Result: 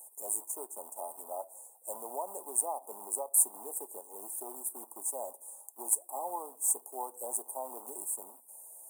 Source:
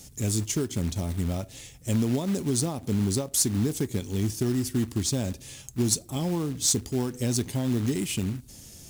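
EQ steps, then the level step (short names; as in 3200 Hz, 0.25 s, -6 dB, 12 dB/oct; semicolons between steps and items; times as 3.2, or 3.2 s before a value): HPF 690 Hz 24 dB/oct; Chebyshev band-stop 950–8600 Hz, order 4; dynamic EQ 870 Hz, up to +3 dB, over -51 dBFS, Q 1.3; +3.0 dB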